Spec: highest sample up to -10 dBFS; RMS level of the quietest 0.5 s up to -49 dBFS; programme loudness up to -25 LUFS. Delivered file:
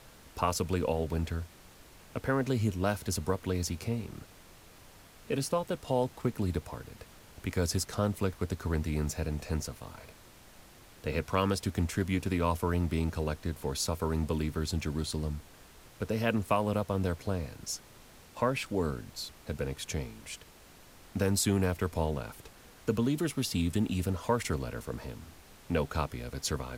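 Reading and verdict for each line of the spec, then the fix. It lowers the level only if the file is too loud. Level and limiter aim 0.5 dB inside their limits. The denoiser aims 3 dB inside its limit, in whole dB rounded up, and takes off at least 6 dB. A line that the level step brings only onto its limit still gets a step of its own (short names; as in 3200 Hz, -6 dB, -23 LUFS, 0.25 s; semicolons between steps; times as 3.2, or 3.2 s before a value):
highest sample -13.0 dBFS: OK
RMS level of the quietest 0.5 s -55 dBFS: OK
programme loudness -32.5 LUFS: OK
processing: none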